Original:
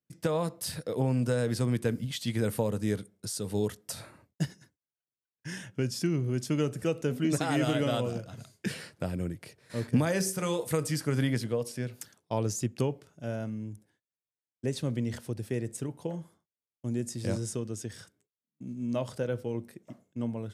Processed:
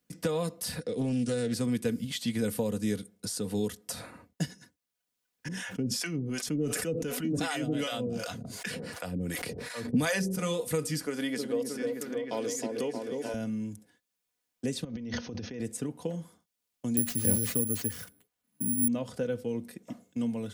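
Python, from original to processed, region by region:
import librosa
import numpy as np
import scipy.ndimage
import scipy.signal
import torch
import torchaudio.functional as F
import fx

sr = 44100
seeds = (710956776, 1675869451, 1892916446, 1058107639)

y = fx.chain(x, sr, fx.brickwall_lowpass(high_hz=10000.0),
    fx.peak_eq(hz=920.0, db=-13.0, octaves=0.74),
    fx.doppler_dist(depth_ms=0.26), at=(0.8, 1.53))
y = fx.chain(y, sr, fx.harmonic_tremolo(hz=2.7, depth_pct=100, crossover_hz=610.0),
    fx.sustainer(db_per_s=28.0), at=(5.48, 10.39))
y = fx.chain(y, sr, fx.cheby1_highpass(hz=390.0, order=2),
    fx.echo_opening(ms=312, hz=750, octaves=1, feedback_pct=70, wet_db=-3), at=(11.06, 13.34))
y = fx.chain(y, sr, fx.brickwall_lowpass(high_hz=6600.0),
    fx.over_compress(threshold_db=-40.0, ratio=-1.0), at=(14.84, 15.6))
y = fx.chain(y, sr, fx.peak_eq(hz=80.0, db=7.5, octaves=2.2),
    fx.resample_bad(factor=4, down='none', up='zero_stuff'), at=(16.97, 18.88))
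y = y + 0.51 * np.pad(y, (int(4.1 * sr / 1000.0), 0))[:len(y)]
y = fx.dynamic_eq(y, sr, hz=1000.0, q=0.73, threshold_db=-41.0, ratio=4.0, max_db=-5)
y = fx.band_squash(y, sr, depth_pct=40)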